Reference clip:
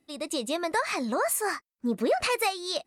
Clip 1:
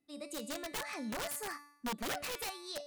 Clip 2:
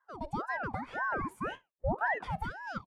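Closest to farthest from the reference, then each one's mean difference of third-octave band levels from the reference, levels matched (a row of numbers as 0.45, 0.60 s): 1, 2; 8.5, 15.5 dB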